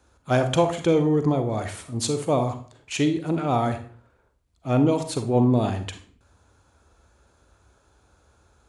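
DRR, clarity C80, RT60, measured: 7.5 dB, 14.5 dB, 0.50 s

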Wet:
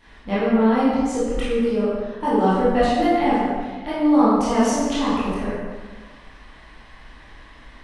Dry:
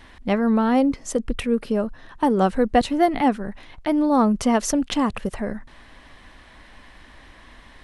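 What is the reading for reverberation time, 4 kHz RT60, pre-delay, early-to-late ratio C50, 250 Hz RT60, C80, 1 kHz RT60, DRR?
1.5 s, 1.1 s, 17 ms, -2.5 dB, 1.4 s, 0.5 dB, 1.5 s, -11.0 dB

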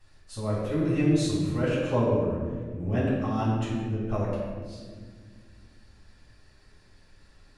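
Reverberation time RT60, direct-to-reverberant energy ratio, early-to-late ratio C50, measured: 1.7 s, -8.0 dB, -0.5 dB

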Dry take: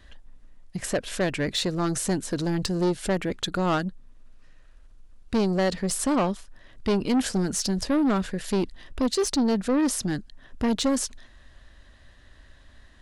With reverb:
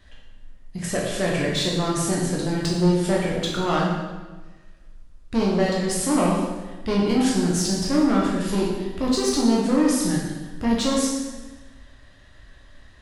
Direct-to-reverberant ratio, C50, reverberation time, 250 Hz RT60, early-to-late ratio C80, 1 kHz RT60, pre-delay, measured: -4.5 dB, 1.0 dB, 1.3 s, 1.4 s, 3.0 dB, 1.2 s, 9 ms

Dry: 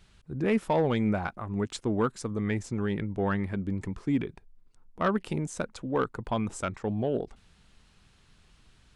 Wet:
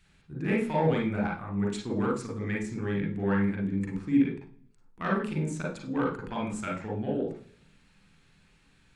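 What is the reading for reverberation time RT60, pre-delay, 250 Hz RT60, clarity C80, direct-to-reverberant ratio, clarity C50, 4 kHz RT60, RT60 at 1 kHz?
0.45 s, 39 ms, 0.70 s, 11.0 dB, -2.5 dB, 3.5 dB, 0.55 s, 0.40 s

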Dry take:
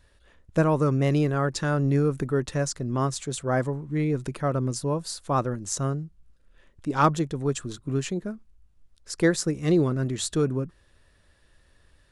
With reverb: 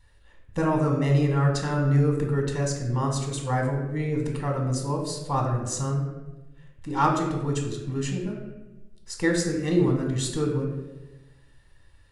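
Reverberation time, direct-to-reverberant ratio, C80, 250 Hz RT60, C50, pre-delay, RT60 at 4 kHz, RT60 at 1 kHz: 1.1 s, 1.0 dB, 7.0 dB, 1.3 s, 4.5 dB, 3 ms, 0.70 s, 0.95 s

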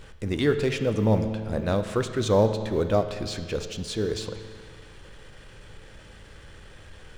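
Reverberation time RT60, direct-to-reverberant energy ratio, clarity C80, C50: 1.9 s, 7.5 dB, 10.0 dB, 9.0 dB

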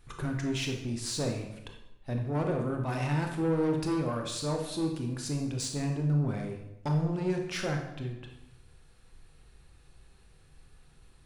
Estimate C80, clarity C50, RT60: 8.5 dB, 5.5 dB, 0.90 s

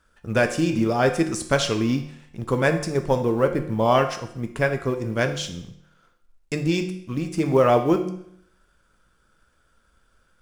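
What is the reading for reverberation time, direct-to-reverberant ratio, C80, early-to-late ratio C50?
0.70 s, 5.5 dB, 13.0 dB, 10.0 dB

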